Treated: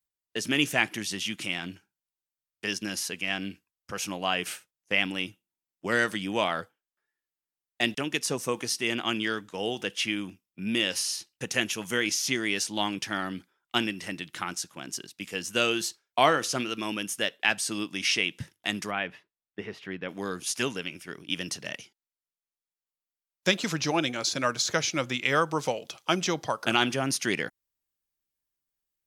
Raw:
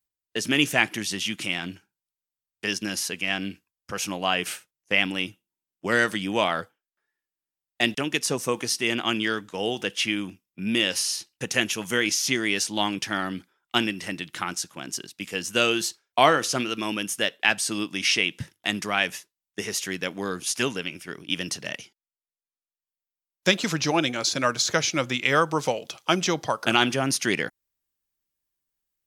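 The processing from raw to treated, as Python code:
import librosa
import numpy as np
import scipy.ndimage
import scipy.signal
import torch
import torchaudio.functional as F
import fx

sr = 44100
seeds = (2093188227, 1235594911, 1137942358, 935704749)

y = fx.air_absorb(x, sr, metres=420.0, at=(18.9, 20.08), fade=0.02)
y = y * librosa.db_to_amplitude(-3.5)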